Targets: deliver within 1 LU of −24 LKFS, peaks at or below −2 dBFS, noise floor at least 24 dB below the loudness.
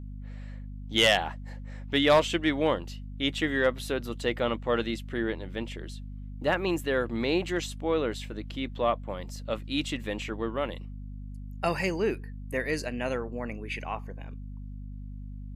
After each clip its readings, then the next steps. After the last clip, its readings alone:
mains hum 50 Hz; hum harmonics up to 250 Hz; level of the hum −37 dBFS; integrated loudness −29.0 LKFS; sample peak −12.5 dBFS; target loudness −24.0 LKFS
→ hum removal 50 Hz, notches 5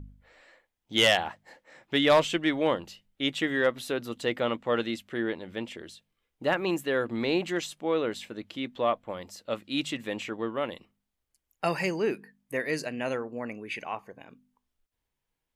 mains hum none found; integrated loudness −29.0 LKFS; sample peak −13.0 dBFS; target loudness −24.0 LKFS
→ level +5 dB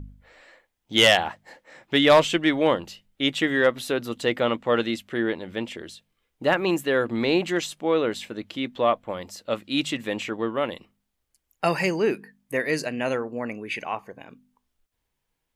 integrated loudness −24.0 LKFS; sample peak −7.5 dBFS; background noise floor −79 dBFS

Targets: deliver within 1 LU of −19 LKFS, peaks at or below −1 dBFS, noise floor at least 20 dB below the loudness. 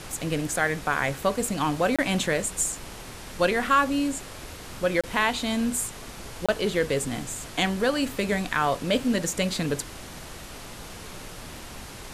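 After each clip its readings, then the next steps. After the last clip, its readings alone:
number of dropouts 3; longest dropout 26 ms; background noise floor −41 dBFS; target noise floor −46 dBFS; integrated loudness −26.0 LKFS; sample peak −9.0 dBFS; target loudness −19.0 LKFS
→ repair the gap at 0:01.96/0:05.01/0:06.46, 26 ms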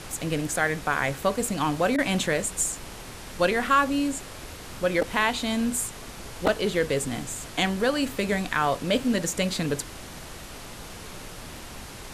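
number of dropouts 0; background noise floor −41 dBFS; target noise floor −46 dBFS
→ noise reduction from a noise print 6 dB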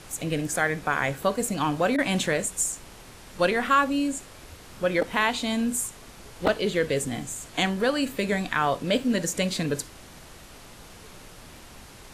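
background noise floor −47 dBFS; integrated loudness −26.0 LKFS; sample peak −9.5 dBFS; target loudness −19.0 LKFS
→ level +7 dB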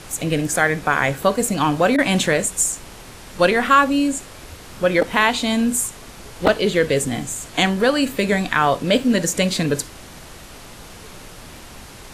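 integrated loudness −19.0 LKFS; sample peak −2.5 dBFS; background noise floor −40 dBFS

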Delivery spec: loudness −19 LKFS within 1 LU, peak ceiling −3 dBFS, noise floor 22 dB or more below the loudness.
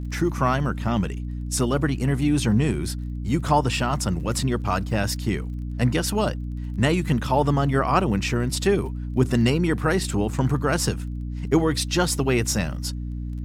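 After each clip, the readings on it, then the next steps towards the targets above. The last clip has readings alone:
crackle rate 20 per second; mains hum 60 Hz; hum harmonics up to 300 Hz; level of the hum −27 dBFS; integrated loudness −23.5 LKFS; sample peak −6.5 dBFS; target loudness −19.0 LKFS
→ click removal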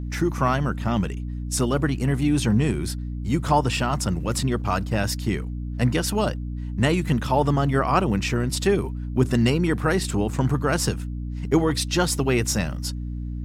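crackle rate 0 per second; mains hum 60 Hz; hum harmonics up to 300 Hz; level of the hum −27 dBFS
→ hum removal 60 Hz, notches 5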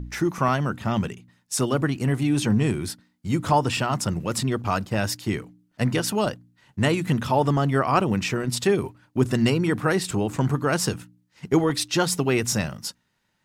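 mains hum none found; integrated loudness −24.0 LKFS; sample peak −7.0 dBFS; target loudness −19.0 LKFS
→ level +5 dB
brickwall limiter −3 dBFS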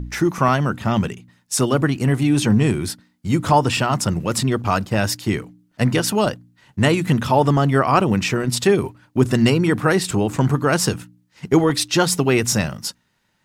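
integrated loudness −19.0 LKFS; sample peak −3.0 dBFS; background noise floor −66 dBFS

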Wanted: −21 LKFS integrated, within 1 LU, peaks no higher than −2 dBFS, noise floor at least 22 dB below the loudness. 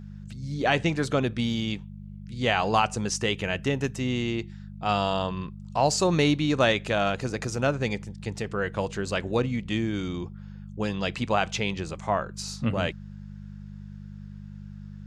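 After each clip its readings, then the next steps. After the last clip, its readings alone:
mains hum 50 Hz; hum harmonics up to 200 Hz; level of the hum −39 dBFS; integrated loudness −27.0 LKFS; sample peak −9.5 dBFS; target loudness −21.0 LKFS
→ hum removal 50 Hz, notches 4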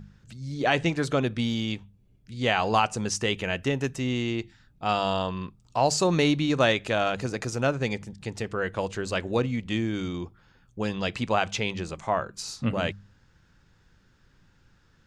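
mains hum none found; integrated loudness −27.5 LKFS; sample peak −9.0 dBFS; target loudness −21.0 LKFS
→ level +6.5 dB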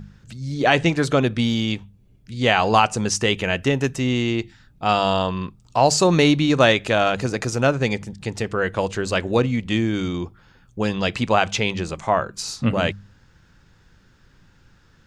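integrated loudness −21.0 LKFS; sample peak −2.5 dBFS; background noise floor −55 dBFS

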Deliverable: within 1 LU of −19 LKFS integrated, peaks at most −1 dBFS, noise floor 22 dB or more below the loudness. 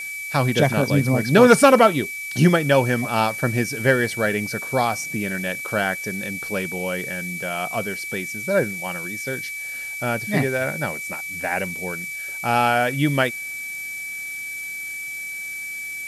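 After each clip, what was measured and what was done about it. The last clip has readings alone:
interfering tone 2,300 Hz; level of the tone −29 dBFS; background noise floor −32 dBFS; target noise floor −44 dBFS; integrated loudness −21.5 LKFS; sample peak −2.0 dBFS; target loudness −19.0 LKFS
→ notch filter 2,300 Hz, Q 30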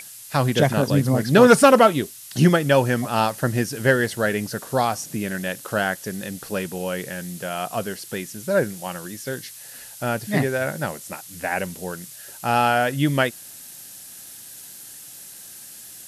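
interfering tone none found; background noise floor −41 dBFS; target noise floor −44 dBFS
→ broadband denoise 6 dB, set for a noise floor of −41 dBFS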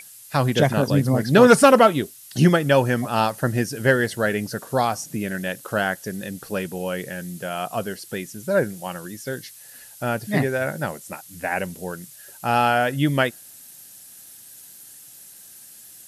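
background noise floor −45 dBFS; integrated loudness −21.5 LKFS; sample peak −2.5 dBFS; target loudness −19.0 LKFS
→ level +2.5 dB
brickwall limiter −1 dBFS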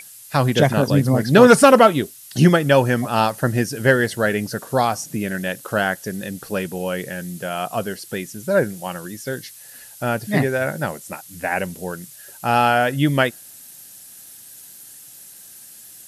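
integrated loudness −19.0 LKFS; sample peak −1.0 dBFS; background noise floor −43 dBFS

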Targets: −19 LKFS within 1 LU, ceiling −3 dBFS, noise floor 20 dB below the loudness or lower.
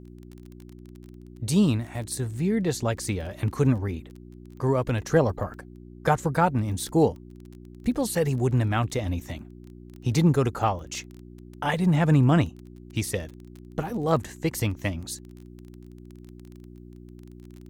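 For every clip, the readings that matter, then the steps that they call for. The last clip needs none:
crackle rate 21 per second; mains hum 60 Hz; hum harmonics up to 360 Hz; level of the hum −47 dBFS; integrated loudness −26.0 LKFS; sample peak −8.5 dBFS; target loudness −19.0 LKFS
→ click removal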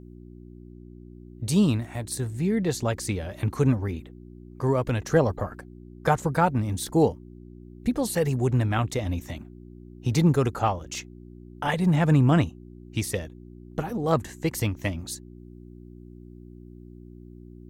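crackle rate 0 per second; mains hum 60 Hz; hum harmonics up to 360 Hz; level of the hum −47 dBFS
→ hum removal 60 Hz, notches 6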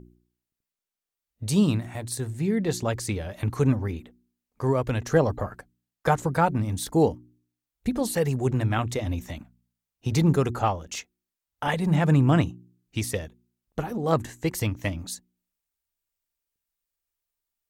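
mains hum none found; integrated loudness −26.0 LKFS; sample peak −8.5 dBFS; target loudness −19.0 LKFS
→ level +7 dB
brickwall limiter −3 dBFS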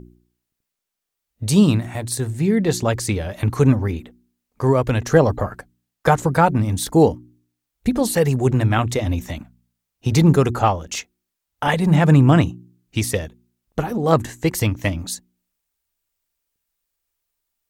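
integrated loudness −19.0 LKFS; sample peak −3.0 dBFS; background noise floor −81 dBFS

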